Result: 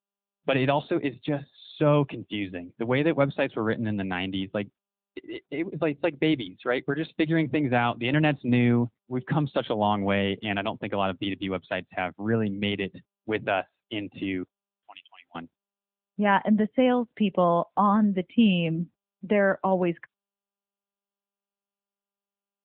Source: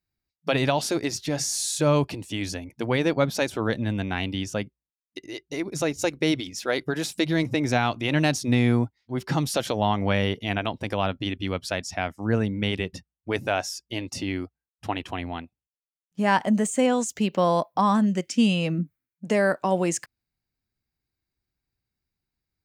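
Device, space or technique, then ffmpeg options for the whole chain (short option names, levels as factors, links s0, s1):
mobile call with aggressive noise cancelling: -filter_complex "[0:a]asettb=1/sr,asplit=3[s0][s1][s2];[s0]atrim=end=14.434[s3];[s1]atrim=start=14.43:end=15.35,asetpts=PTS-STARTPTS,afade=t=in:d=0.004:c=qsin,afade=t=out:st=0.916:d=0.004:c=qsin,aderivative[s4];[s2]atrim=start=15.346[s5];[s3][s4]acrossfade=d=0.004:c1=hsin:c2=qsin[s6];[s6][s5]acrossfade=d=0.004:c1=qsin:c2=hsin,highpass=f=110:w=0.5412,highpass=f=110:w=1.3066,afftdn=nr=35:nf=-43" -ar 8000 -c:a libopencore_amrnb -b:a 10200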